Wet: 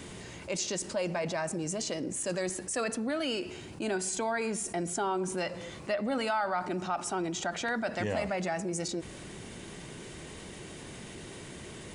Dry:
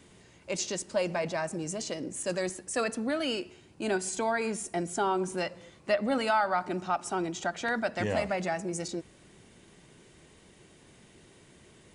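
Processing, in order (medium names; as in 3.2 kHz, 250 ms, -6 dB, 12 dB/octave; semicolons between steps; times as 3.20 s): level flattener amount 50%; trim -5.5 dB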